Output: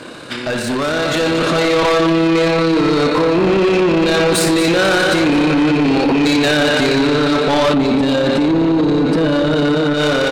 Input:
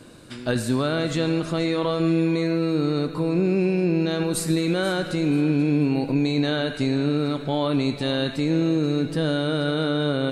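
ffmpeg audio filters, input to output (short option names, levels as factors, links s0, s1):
-filter_complex "[0:a]highshelf=f=6700:g=-7.5,aecho=1:1:47|73|232|566|638|761:0.266|0.282|0.335|0.126|0.141|0.126,asplit=2[s0][s1];[s1]highpass=f=720:p=1,volume=12.6,asoftclip=type=tanh:threshold=0.501[s2];[s0][s2]amix=inputs=2:normalize=0,lowpass=f=4300:p=1,volume=0.501,asettb=1/sr,asplit=3[s3][s4][s5];[s3]atrim=end=7.734[s6];[s4]atrim=start=7.73:end=9.94,asetpts=PTS-STARTPTS,afade=t=in:d=0.004:c=qsin,afade=t=out:st=2.206:d=0.004:c=qsin,equalizer=f=220:t=o:w=2.2:g=12[s7];[s5]atrim=start=9.936[s8];[s6][s7]acrossfade=d=0.004:c1=hsin:c2=qsin[s9];[s9][s8]acrossfade=d=0.004:c1=qsin:c2=hsin,alimiter=limit=0.224:level=0:latency=1:release=204,tremolo=f=34:d=0.333,asoftclip=type=tanh:threshold=0.0891,dynaudnorm=f=270:g=9:m=2,volume=1.78"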